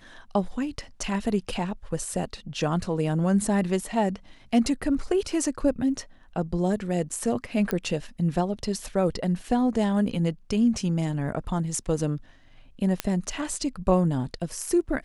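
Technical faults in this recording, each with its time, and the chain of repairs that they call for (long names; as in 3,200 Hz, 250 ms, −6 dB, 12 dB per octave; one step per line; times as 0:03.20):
0:07.71: click −12 dBFS
0:13.00: click −9 dBFS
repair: click removal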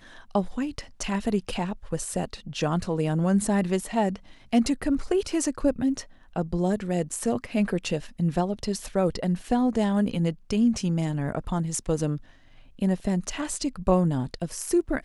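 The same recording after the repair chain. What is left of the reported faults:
none of them is left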